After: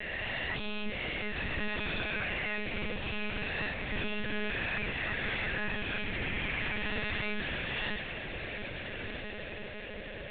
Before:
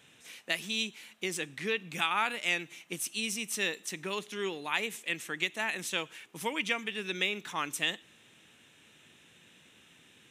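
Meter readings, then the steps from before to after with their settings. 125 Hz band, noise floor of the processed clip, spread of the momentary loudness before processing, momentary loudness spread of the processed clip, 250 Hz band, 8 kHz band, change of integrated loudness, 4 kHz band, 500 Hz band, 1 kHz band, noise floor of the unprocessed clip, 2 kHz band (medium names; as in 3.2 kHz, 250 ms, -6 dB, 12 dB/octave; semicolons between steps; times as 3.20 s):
+8.5 dB, -42 dBFS, 7 LU, 7 LU, +1.5 dB, under -40 dB, -2.0 dB, -3.5 dB, -1.0 dB, -4.5 dB, -61 dBFS, +1.0 dB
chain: reverse spectral sustain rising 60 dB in 1.44 s; level-controlled noise filter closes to 1.6 kHz, open at -28 dBFS; FFT band-reject 410–1500 Hz; FFT filter 190 Hz 0 dB, 320 Hz -17 dB, 530 Hz -20 dB, 800 Hz +5 dB, 1.5 kHz -12 dB; overdrive pedal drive 37 dB, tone 1 kHz, clips at -23.5 dBFS; whistle 580 Hz -47 dBFS; on a send: echo that smears into a reverb 1357 ms, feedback 51%, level -7 dB; on the sum: monotone LPC vocoder at 8 kHz 210 Hz; trim +2 dB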